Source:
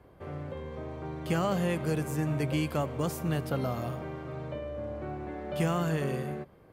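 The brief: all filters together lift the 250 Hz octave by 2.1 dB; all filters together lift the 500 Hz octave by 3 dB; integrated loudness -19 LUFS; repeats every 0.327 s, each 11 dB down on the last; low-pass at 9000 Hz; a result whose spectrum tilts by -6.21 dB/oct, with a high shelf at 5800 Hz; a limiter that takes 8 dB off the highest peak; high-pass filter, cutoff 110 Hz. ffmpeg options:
-af "highpass=110,lowpass=9k,equalizer=f=250:t=o:g=3,equalizer=f=500:t=o:g=3,highshelf=f=5.8k:g=-8,alimiter=limit=-23dB:level=0:latency=1,aecho=1:1:327|654|981:0.282|0.0789|0.0221,volume=14.5dB"

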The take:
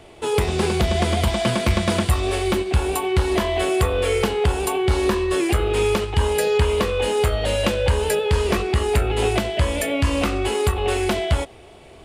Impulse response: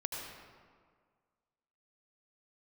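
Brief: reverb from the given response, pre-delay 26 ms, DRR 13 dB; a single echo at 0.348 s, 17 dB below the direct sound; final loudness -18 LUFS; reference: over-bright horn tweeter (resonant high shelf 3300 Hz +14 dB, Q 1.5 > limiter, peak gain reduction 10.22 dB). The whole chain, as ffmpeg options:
-filter_complex "[0:a]aecho=1:1:348:0.141,asplit=2[a][b];[1:a]atrim=start_sample=2205,adelay=26[c];[b][c]afir=irnorm=-1:irlink=0,volume=-15dB[d];[a][d]amix=inputs=2:normalize=0,highshelf=f=3.3k:t=q:w=1.5:g=14,volume=0.5dB,alimiter=limit=-8dB:level=0:latency=1"

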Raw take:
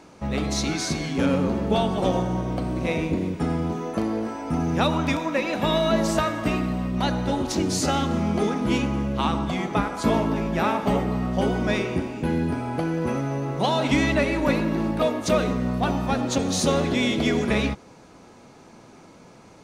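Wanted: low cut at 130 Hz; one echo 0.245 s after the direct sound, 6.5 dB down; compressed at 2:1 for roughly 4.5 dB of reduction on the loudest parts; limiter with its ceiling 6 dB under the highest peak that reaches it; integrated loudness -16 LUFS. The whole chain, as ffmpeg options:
-af "highpass=130,acompressor=threshold=-25dB:ratio=2,alimiter=limit=-18.5dB:level=0:latency=1,aecho=1:1:245:0.473,volume=11.5dB"

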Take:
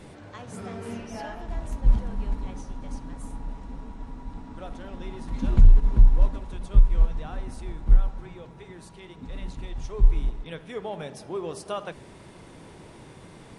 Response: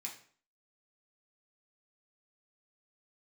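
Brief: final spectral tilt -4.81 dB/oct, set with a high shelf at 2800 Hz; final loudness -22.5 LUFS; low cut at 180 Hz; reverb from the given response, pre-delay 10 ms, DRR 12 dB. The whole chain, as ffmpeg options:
-filter_complex "[0:a]highpass=180,highshelf=f=2.8k:g=5,asplit=2[a][b];[1:a]atrim=start_sample=2205,adelay=10[c];[b][c]afir=irnorm=-1:irlink=0,volume=-9.5dB[d];[a][d]amix=inputs=2:normalize=0,volume=17dB"

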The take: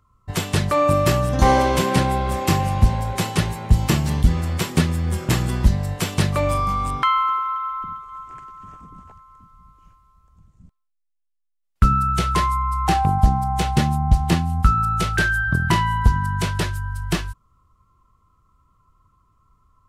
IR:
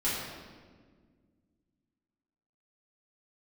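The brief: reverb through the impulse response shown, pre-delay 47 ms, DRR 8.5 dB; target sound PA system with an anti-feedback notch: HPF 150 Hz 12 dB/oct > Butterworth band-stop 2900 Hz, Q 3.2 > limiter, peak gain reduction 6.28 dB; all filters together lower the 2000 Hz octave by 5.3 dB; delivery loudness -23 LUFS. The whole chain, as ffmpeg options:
-filter_complex "[0:a]equalizer=f=2k:t=o:g=-7,asplit=2[a][b];[1:a]atrim=start_sample=2205,adelay=47[c];[b][c]afir=irnorm=-1:irlink=0,volume=-17dB[d];[a][d]amix=inputs=2:normalize=0,highpass=150,asuperstop=centerf=2900:order=8:qfactor=3.2,volume=1dB,alimiter=limit=-11.5dB:level=0:latency=1"

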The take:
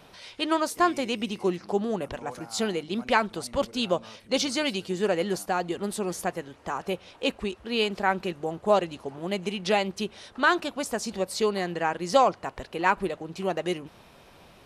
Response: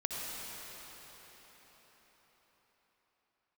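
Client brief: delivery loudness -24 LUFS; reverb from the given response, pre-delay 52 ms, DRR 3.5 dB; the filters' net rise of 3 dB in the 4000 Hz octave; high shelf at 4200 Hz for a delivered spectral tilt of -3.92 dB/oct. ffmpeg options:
-filter_complex "[0:a]equalizer=f=4k:t=o:g=7,highshelf=f=4.2k:g=-5.5,asplit=2[a][b];[1:a]atrim=start_sample=2205,adelay=52[c];[b][c]afir=irnorm=-1:irlink=0,volume=-8dB[d];[a][d]amix=inputs=2:normalize=0,volume=2dB"

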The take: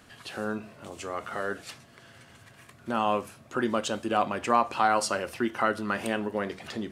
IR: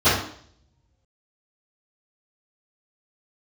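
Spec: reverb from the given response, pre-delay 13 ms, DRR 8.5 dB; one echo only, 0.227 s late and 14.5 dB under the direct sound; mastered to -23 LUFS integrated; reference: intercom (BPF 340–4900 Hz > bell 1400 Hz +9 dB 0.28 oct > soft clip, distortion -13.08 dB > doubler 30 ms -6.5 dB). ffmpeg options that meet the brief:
-filter_complex "[0:a]aecho=1:1:227:0.188,asplit=2[a][b];[1:a]atrim=start_sample=2205,adelay=13[c];[b][c]afir=irnorm=-1:irlink=0,volume=-30dB[d];[a][d]amix=inputs=2:normalize=0,highpass=340,lowpass=4.9k,equalizer=f=1.4k:t=o:w=0.28:g=9,asoftclip=threshold=-16.5dB,asplit=2[e][f];[f]adelay=30,volume=-6.5dB[g];[e][g]amix=inputs=2:normalize=0,volume=5dB"

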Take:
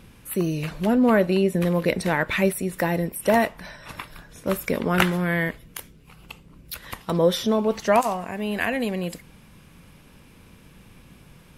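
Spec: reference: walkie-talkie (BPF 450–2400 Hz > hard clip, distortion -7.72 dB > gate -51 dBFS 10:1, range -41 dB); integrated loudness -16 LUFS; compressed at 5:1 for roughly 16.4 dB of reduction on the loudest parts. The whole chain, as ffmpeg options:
-af "acompressor=threshold=-33dB:ratio=5,highpass=450,lowpass=2.4k,asoftclip=type=hard:threshold=-37.5dB,agate=range=-41dB:threshold=-51dB:ratio=10,volume=28dB"

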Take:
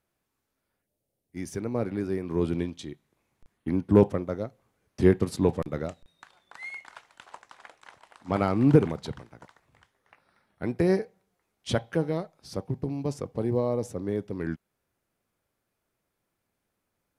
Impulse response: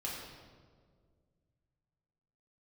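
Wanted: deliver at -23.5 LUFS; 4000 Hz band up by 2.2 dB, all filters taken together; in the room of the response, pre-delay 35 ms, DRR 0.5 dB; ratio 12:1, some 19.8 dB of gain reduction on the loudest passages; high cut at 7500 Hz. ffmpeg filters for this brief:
-filter_complex "[0:a]lowpass=7.5k,equalizer=f=4k:t=o:g=3,acompressor=threshold=-32dB:ratio=12,asplit=2[a][b];[1:a]atrim=start_sample=2205,adelay=35[c];[b][c]afir=irnorm=-1:irlink=0,volume=-2.5dB[d];[a][d]amix=inputs=2:normalize=0,volume=13dB"

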